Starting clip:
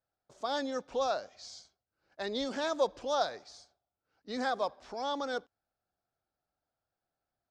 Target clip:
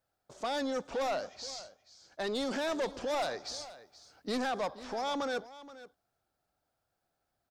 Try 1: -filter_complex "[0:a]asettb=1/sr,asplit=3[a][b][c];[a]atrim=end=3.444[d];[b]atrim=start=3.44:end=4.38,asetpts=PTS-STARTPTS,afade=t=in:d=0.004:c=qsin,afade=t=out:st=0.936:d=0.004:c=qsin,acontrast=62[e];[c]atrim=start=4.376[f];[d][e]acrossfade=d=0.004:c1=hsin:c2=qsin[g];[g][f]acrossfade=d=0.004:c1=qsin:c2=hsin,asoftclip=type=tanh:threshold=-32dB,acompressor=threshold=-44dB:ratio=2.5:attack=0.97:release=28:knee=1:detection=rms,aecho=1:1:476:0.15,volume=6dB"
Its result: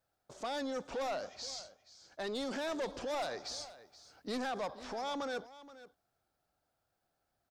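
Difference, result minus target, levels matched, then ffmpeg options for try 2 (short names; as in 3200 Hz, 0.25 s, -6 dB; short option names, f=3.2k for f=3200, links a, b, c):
compressor: peak gain reduction +4 dB
-filter_complex "[0:a]asettb=1/sr,asplit=3[a][b][c];[a]atrim=end=3.444[d];[b]atrim=start=3.44:end=4.38,asetpts=PTS-STARTPTS,afade=t=in:d=0.004:c=qsin,afade=t=out:st=0.936:d=0.004:c=qsin,acontrast=62[e];[c]atrim=start=4.376[f];[d][e]acrossfade=d=0.004:c1=hsin:c2=qsin[g];[g][f]acrossfade=d=0.004:c1=qsin:c2=hsin,asoftclip=type=tanh:threshold=-32dB,acompressor=threshold=-37dB:ratio=2.5:attack=0.97:release=28:knee=1:detection=rms,aecho=1:1:476:0.15,volume=6dB"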